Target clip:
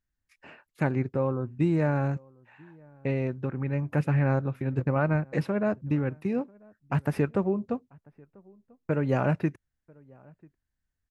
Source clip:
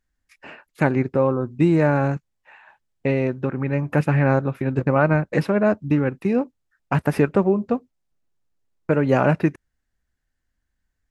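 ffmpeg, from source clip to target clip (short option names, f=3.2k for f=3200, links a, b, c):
-filter_complex "[0:a]equalizer=f=110:w=1.2:g=6,asplit=2[a][b];[b]adelay=991.3,volume=-27dB,highshelf=f=4k:g=-22.3[c];[a][c]amix=inputs=2:normalize=0,volume=-9dB"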